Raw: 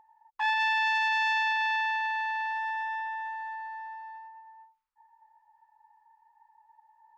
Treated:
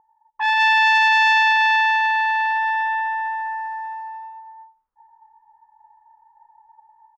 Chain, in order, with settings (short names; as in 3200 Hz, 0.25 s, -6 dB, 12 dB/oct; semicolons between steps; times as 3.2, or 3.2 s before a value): low-pass opened by the level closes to 860 Hz, open at -24 dBFS; AGC gain up to 10 dB; speakerphone echo 90 ms, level -21 dB; gain +1.5 dB